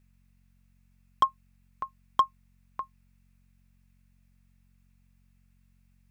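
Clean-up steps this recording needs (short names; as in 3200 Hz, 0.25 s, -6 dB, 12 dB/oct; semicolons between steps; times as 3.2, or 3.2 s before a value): clip repair -13.5 dBFS; de-hum 45.6 Hz, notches 5; denoiser 30 dB, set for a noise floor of -65 dBFS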